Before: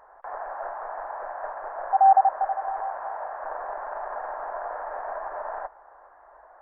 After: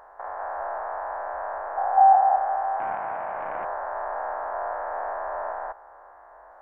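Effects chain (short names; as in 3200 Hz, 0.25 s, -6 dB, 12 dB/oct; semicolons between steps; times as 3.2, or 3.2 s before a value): stepped spectrum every 0.2 s; 2.8–3.65 Doppler distortion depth 0.18 ms; gain +4.5 dB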